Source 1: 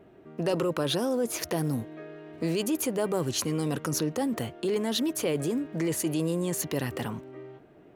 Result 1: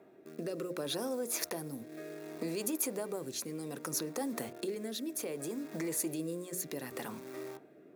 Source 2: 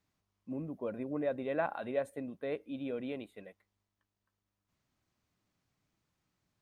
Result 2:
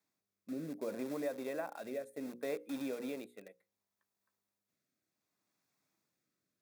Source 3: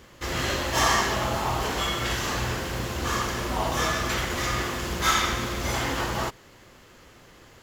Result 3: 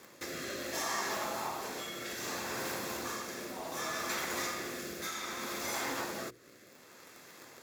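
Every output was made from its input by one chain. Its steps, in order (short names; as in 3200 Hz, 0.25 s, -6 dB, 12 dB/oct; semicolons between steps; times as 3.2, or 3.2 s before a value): in parallel at -7.5 dB: bit-crush 7-bit; on the sum: compressor 4:1, threshold -33 dBFS; notch 3000 Hz, Q 5.9; rotary speaker horn 0.65 Hz; HPF 220 Hz 12 dB/oct; high shelf 9400 Hz +9.5 dB; notches 60/120/180/240/300/360/420/480/540 Hz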